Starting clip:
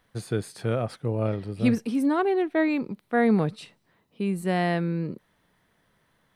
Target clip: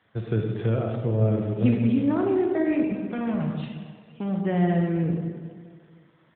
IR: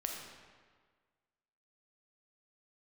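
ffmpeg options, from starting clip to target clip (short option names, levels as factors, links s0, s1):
-filter_complex "[0:a]equalizer=f=270:w=3.5:g=-4.5,acrossover=split=350[s0][s1];[s1]acompressor=threshold=0.0178:ratio=6[s2];[s0][s2]amix=inputs=2:normalize=0,asplit=3[s3][s4][s5];[s3]afade=t=out:st=3.08:d=0.02[s6];[s4]volume=35.5,asoftclip=hard,volume=0.0282,afade=t=in:st=3.08:d=0.02,afade=t=out:st=4.4:d=0.02[s7];[s5]afade=t=in:st=4.4:d=0.02[s8];[s6][s7][s8]amix=inputs=3:normalize=0,aecho=1:1:475|950:0.0708|0.0262[s9];[1:a]atrim=start_sample=2205[s10];[s9][s10]afir=irnorm=-1:irlink=0,volume=1.88" -ar 8000 -c:a libopencore_amrnb -b:a 12200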